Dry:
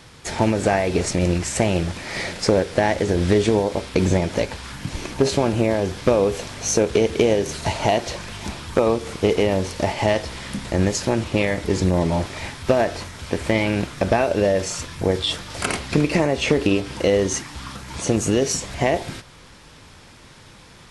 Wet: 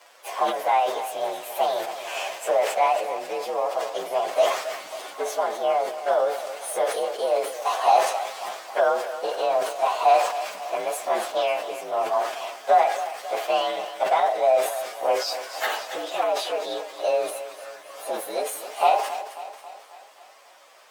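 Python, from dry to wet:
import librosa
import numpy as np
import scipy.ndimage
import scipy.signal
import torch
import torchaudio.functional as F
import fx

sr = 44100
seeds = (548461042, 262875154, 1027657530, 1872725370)

p1 = fx.partial_stretch(x, sr, pct=114)
p2 = fx.high_shelf(p1, sr, hz=5300.0, db=-4.5)
p3 = fx.rider(p2, sr, range_db=5, speed_s=0.5)
p4 = fx.ladder_highpass(p3, sr, hz=570.0, resonance_pct=50)
p5 = fx.dynamic_eq(p4, sr, hz=1500.0, q=1.6, threshold_db=-45.0, ratio=4.0, max_db=5)
p6 = p5 + fx.echo_feedback(p5, sr, ms=271, feedback_pct=55, wet_db=-13.0, dry=0)
p7 = fx.sustainer(p6, sr, db_per_s=82.0)
y = p7 * librosa.db_to_amplitude(6.0)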